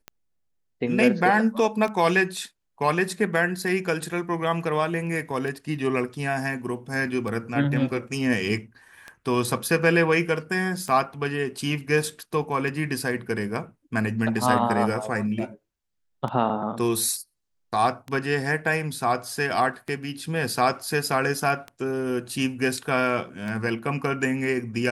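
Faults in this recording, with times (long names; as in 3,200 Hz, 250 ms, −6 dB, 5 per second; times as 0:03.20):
scratch tick 33 1/3 rpm −20 dBFS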